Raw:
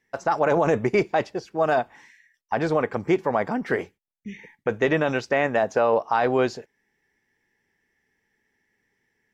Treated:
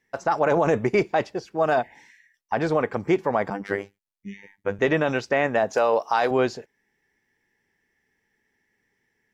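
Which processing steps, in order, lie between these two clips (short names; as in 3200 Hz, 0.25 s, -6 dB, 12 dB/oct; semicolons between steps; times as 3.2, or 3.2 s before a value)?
1.85–2.06 spectral repair 1000–3100 Hz after; 3.5–4.79 robotiser 99.5 Hz; 5.73–6.31 tone controls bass -9 dB, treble +13 dB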